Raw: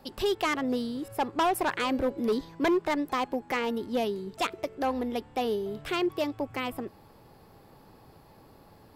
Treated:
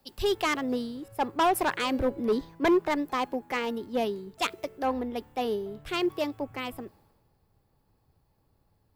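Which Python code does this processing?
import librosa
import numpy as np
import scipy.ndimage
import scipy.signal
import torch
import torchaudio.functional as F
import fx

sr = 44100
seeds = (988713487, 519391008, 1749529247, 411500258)

y = fx.dmg_noise_colour(x, sr, seeds[0], colour='violet', level_db=-69.0)
y = fx.band_widen(y, sr, depth_pct=70)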